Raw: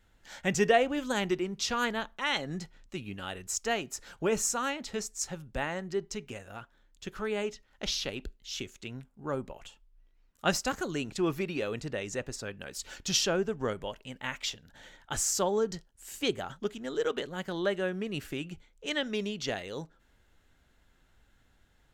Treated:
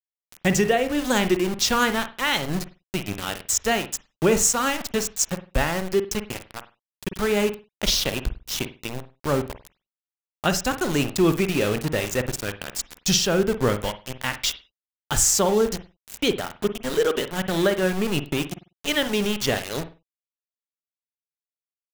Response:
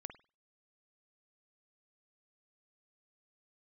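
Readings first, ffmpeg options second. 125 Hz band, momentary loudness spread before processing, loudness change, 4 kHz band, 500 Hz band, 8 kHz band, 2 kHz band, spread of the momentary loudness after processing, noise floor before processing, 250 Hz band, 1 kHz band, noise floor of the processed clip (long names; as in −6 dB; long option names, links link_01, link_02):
+11.5 dB, 14 LU, +9.0 dB, +8.5 dB, +8.0 dB, +10.5 dB, +8.0 dB, 12 LU, −67 dBFS, +10.0 dB, +7.5 dB, below −85 dBFS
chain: -filter_complex "[0:a]aeval=exprs='val(0)*gte(abs(val(0)),0.015)':channel_layout=same,alimiter=limit=-20dB:level=0:latency=1:release=443,asplit=2[link_01][link_02];[link_02]highshelf=frequency=4300:gain=6[link_03];[1:a]atrim=start_sample=2205,afade=type=out:start_time=0.24:duration=0.01,atrim=end_sample=11025,lowshelf=frequency=220:gain=10[link_04];[link_03][link_04]afir=irnorm=-1:irlink=0,volume=10.5dB[link_05];[link_01][link_05]amix=inputs=2:normalize=0"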